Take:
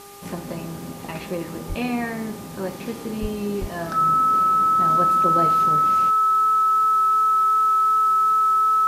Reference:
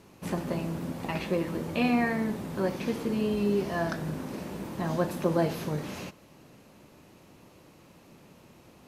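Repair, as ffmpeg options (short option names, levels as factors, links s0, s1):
-filter_complex "[0:a]bandreject=f=402.7:t=h:w=4,bandreject=f=805.4:t=h:w=4,bandreject=f=1208.1:t=h:w=4,bandreject=f=1300:w=30,asplit=3[s0][s1][s2];[s0]afade=t=out:st=1.68:d=0.02[s3];[s1]highpass=f=140:w=0.5412,highpass=f=140:w=1.3066,afade=t=in:st=1.68:d=0.02,afade=t=out:st=1.8:d=0.02[s4];[s2]afade=t=in:st=1.8:d=0.02[s5];[s3][s4][s5]amix=inputs=3:normalize=0,asplit=3[s6][s7][s8];[s6]afade=t=out:st=3.21:d=0.02[s9];[s7]highpass=f=140:w=0.5412,highpass=f=140:w=1.3066,afade=t=in:st=3.21:d=0.02,afade=t=out:st=3.33:d=0.02[s10];[s8]afade=t=in:st=3.33:d=0.02[s11];[s9][s10][s11]amix=inputs=3:normalize=0,asplit=3[s12][s13][s14];[s12]afade=t=out:st=3.6:d=0.02[s15];[s13]highpass=f=140:w=0.5412,highpass=f=140:w=1.3066,afade=t=in:st=3.6:d=0.02,afade=t=out:st=3.72:d=0.02[s16];[s14]afade=t=in:st=3.72:d=0.02[s17];[s15][s16][s17]amix=inputs=3:normalize=0,afwtdn=0.0056"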